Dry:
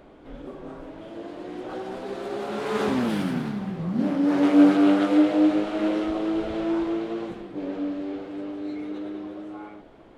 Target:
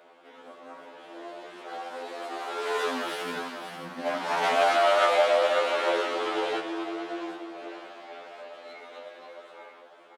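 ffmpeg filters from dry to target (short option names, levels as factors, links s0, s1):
-filter_complex "[0:a]highpass=670,aecho=1:1:537:0.398,asettb=1/sr,asplit=3[s0][s1][s2];[s0]atrim=end=4.064[s3];[s1]atrim=start=4.06:end=6.6,asetpts=PTS-STARTPTS,afade=t=in:d=0.004:c=qsin,afade=t=out:st=2.536:d=0.004:c=qsin,acontrast=47[s4];[s2]atrim=start=6.596[s5];[s3][s4]acrossfade=d=0.004:c1=hsin:c2=qsin[s6];[s6][s5]acrossfade=d=0.004:c1=qsin:c2=hsin,afftfilt=real='re*2*eq(mod(b,4),0)':imag='im*2*eq(mod(b,4),0)':win_size=2048:overlap=0.75,volume=1.5"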